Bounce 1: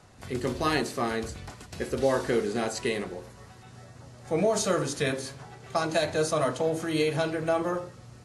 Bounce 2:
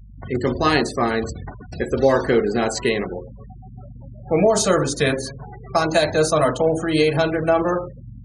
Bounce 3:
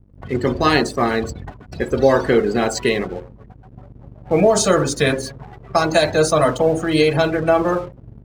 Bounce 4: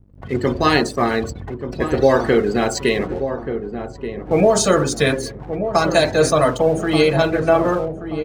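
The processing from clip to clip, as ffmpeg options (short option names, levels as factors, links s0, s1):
-af "aeval=exprs='val(0)+0.00355*(sin(2*PI*50*n/s)+sin(2*PI*2*50*n/s)/2+sin(2*PI*3*50*n/s)/3+sin(2*PI*4*50*n/s)/4+sin(2*PI*5*50*n/s)/5)':c=same,afftfilt=real='re*gte(hypot(re,im),0.0126)':imag='im*gte(hypot(re,im),0.0126)':win_size=1024:overlap=0.75,volume=2.66"
-af "aeval=exprs='sgn(val(0))*max(abs(val(0))-0.0075,0)':c=same,volume=1.33"
-filter_complex "[0:a]asplit=2[s0][s1];[s1]adelay=1181,lowpass=f=900:p=1,volume=0.398,asplit=2[s2][s3];[s3]adelay=1181,lowpass=f=900:p=1,volume=0.45,asplit=2[s4][s5];[s5]adelay=1181,lowpass=f=900:p=1,volume=0.45,asplit=2[s6][s7];[s7]adelay=1181,lowpass=f=900:p=1,volume=0.45,asplit=2[s8][s9];[s9]adelay=1181,lowpass=f=900:p=1,volume=0.45[s10];[s0][s2][s4][s6][s8][s10]amix=inputs=6:normalize=0"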